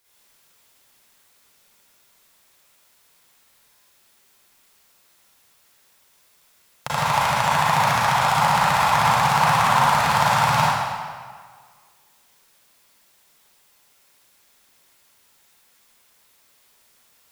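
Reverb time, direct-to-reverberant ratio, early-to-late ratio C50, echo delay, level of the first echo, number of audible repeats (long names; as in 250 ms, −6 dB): 1.7 s, −10.5 dB, −6.0 dB, no echo audible, no echo audible, no echo audible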